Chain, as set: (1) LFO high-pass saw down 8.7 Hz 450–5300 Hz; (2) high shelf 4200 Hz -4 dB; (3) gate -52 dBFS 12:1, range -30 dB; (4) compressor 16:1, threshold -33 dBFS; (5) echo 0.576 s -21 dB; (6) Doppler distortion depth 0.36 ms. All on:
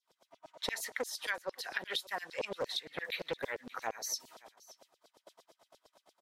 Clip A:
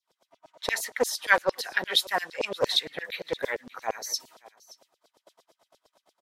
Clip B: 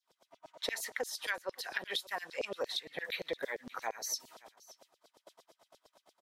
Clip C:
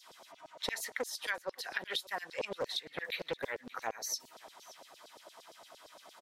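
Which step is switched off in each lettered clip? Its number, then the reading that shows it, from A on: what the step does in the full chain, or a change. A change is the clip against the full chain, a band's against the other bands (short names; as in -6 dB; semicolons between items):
4, mean gain reduction 7.5 dB; 6, 125 Hz band -4.5 dB; 3, momentary loudness spread change -2 LU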